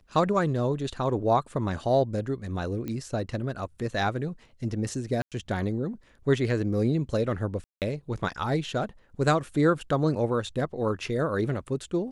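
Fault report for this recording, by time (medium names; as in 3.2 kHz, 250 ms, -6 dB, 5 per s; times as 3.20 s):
2.88 s: pop -21 dBFS
5.22–5.32 s: dropout 97 ms
7.64–7.82 s: dropout 178 ms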